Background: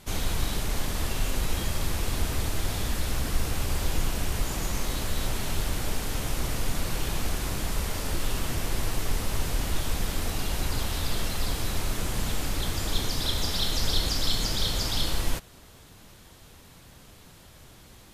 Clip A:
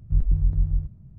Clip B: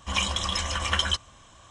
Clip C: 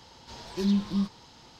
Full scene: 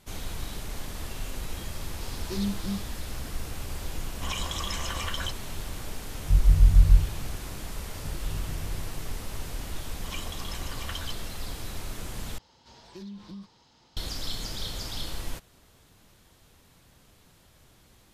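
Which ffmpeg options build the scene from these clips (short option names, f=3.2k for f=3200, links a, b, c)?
-filter_complex "[3:a]asplit=2[a][b];[2:a]asplit=2[c][d];[1:a]asplit=2[e][f];[0:a]volume=-7.5dB[g];[a]bass=f=250:g=-2,treble=f=4k:g=6[h];[c]acompressor=threshold=-27dB:ratio=6:attack=3.2:release=140:knee=1:detection=peak[i];[e]asubboost=boost=9.5:cutoff=150[j];[f]acompressor=threshold=-31dB:ratio=6:attack=3.2:release=140:knee=1:detection=peak[k];[b]acompressor=threshold=-30dB:ratio=6:attack=3.2:release=140:knee=1:detection=peak[l];[g]asplit=2[m][n];[m]atrim=end=12.384[o];[l]atrim=end=1.59,asetpts=PTS-STARTPTS,volume=-8.5dB[p];[n]atrim=start=13.966[q];[h]atrim=end=1.59,asetpts=PTS-STARTPTS,volume=-4dB,afade=t=in:d=0.004:c=hsin,afade=t=out:st=1.586:d=0.004:c=hsin,adelay=1730[r];[i]atrim=end=1.7,asetpts=PTS-STARTPTS,volume=-2dB,afade=t=in:d=0.004:c=hsin,afade=t=out:st=1.696:d=0.004:c=hsin,adelay=4150[s];[j]atrim=end=1.18,asetpts=PTS-STARTPTS,volume=-2.5dB,afade=t=in:d=0.004:c=hsin,afade=t=out:st=1.176:d=0.004:c=hsin,adelay=272538S[t];[k]atrim=end=1.18,asetpts=PTS-STARTPTS,volume=-0.5dB,afade=t=in:d=0.004:c=hsin,afade=t=out:st=1.176:d=0.004:c=hsin,adelay=7950[u];[d]atrim=end=1.7,asetpts=PTS-STARTPTS,volume=-13.5dB,afade=t=in:d=0.004:c=hsin,afade=t=out:st=1.696:d=0.004:c=hsin,adelay=9960[v];[o][p]acrossfade=d=0.004:c1=hsin:c2=hsin[w];[w][q]acrossfade=d=0.004:c1=hsin:c2=hsin[x];[x][r][s][t][u][v]amix=inputs=6:normalize=0"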